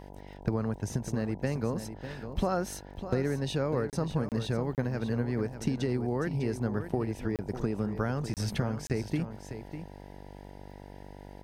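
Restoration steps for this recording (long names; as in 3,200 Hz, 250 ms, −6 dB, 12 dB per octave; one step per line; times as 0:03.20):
click removal
hum removal 48.8 Hz, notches 20
repair the gap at 0:03.90/0:04.29/0:04.75/0:07.36/0:08.34/0:08.87, 28 ms
echo removal 599 ms −10.5 dB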